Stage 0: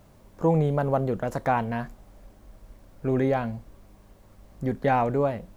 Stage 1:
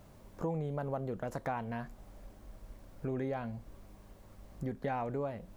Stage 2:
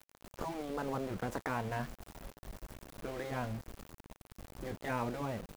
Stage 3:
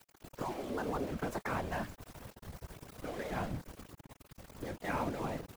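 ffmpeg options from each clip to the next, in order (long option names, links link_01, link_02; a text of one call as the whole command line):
ffmpeg -i in.wav -af "acompressor=threshold=-36dB:ratio=2.5,volume=-2dB" out.wav
ffmpeg -i in.wav -af "afftfilt=real='re*lt(hypot(re,im),0.0891)':imag='im*lt(hypot(re,im),0.0891)':win_size=1024:overlap=0.75,aeval=exprs='val(0)*gte(abs(val(0)),0.00398)':channel_layout=same,volume=4dB" out.wav
ffmpeg -i in.wav -af "afftfilt=real='hypot(re,im)*cos(2*PI*random(0))':imag='hypot(re,im)*sin(2*PI*random(1))':win_size=512:overlap=0.75,volume=6.5dB" out.wav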